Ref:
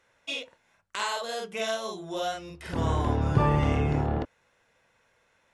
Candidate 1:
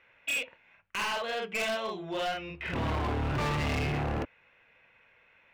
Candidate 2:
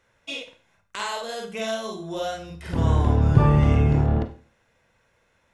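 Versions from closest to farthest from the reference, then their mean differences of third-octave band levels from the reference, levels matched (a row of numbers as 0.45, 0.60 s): 2, 1; 3.5, 6.0 dB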